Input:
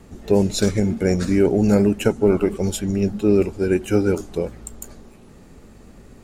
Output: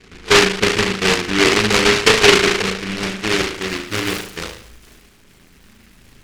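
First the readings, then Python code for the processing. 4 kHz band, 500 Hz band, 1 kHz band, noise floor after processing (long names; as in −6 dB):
+19.0 dB, +1.0 dB, +13.0 dB, −50 dBFS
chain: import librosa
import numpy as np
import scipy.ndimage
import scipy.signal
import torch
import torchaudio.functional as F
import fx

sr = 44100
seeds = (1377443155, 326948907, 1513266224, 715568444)

y = fx.room_flutter(x, sr, wall_m=6.3, rt60_s=0.62)
y = fx.filter_sweep_lowpass(y, sr, from_hz=450.0, to_hz=1500.0, start_s=2.75, end_s=4.38, q=5.2)
y = fx.noise_mod_delay(y, sr, seeds[0], noise_hz=2000.0, depth_ms=0.39)
y = y * librosa.db_to_amplitude(-7.0)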